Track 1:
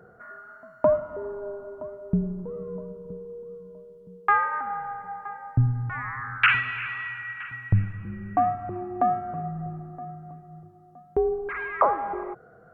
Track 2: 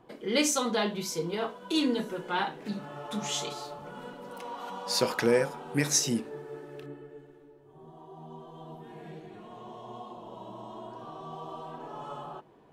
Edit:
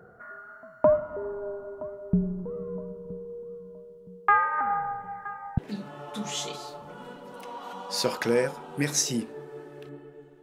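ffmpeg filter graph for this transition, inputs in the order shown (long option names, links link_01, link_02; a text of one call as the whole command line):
ffmpeg -i cue0.wav -i cue1.wav -filter_complex "[0:a]asettb=1/sr,asplit=3[link_01][link_02][link_03];[link_01]atrim=end=4.584[link_04];[link_02]atrim=start=4.58:end=5.58,asetpts=PTS-STARTPTS,afade=type=in:duration=0.004:curve=qsin,afade=type=out:start_time=0.996:duration=0.004:curve=qsin,aphaser=in_gain=1:out_gain=1:delay=4.7:decay=0.4:speed=0.17:type=sinusoidal[link_05];[link_03]atrim=start=5.576[link_06];[link_04][link_05]acrossfade=duration=0.004:curve1=hsin:curve2=qsin[link_07];[link_07][link_06]acrossfade=duration=0.004:curve1=qsin:curve2=hsin,apad=whole_dur=10.42,atrim=end=10.42,atrim=end=5.582[link_08];[1:a]atrim=start=2.548:end=7.39[link_09];[link_08][link_09]acrossfade=duration=0.004:curve1=hsin:curve2=hsin" out.wav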